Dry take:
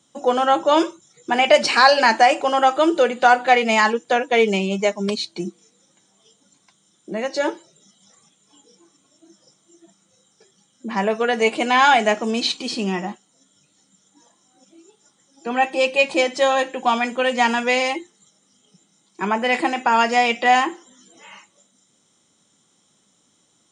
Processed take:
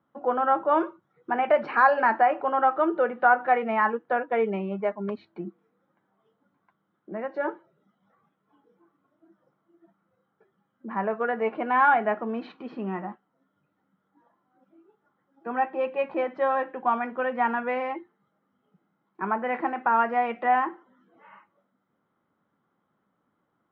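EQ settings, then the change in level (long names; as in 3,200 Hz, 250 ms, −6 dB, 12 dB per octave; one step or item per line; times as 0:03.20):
transistor ladder low-pass 1,700 Hz, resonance 40%
0.0 dB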